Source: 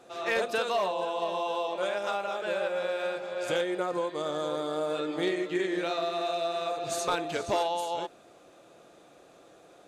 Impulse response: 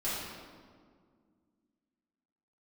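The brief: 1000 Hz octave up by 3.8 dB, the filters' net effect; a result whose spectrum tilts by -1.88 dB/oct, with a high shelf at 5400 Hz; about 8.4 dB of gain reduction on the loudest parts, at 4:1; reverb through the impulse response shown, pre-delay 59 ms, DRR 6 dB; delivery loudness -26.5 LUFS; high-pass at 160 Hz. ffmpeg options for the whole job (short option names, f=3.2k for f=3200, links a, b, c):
-filter_complex "[0:a]highpass=160,equalizer=f=1k:t=o:g=5.5,highshelf=f=5.4k:g=-5,acompressor=threshold=-31dB:ratio=4,asplit=2[a][b];[1:a]atrim=start_sample=2205,adelay=59[c];[b][c]afir=irnorm=-1:irlink=0,volume=-12.5dB[d];[a][d]amix=inputs=2:normalize=0,volume=6.5dB"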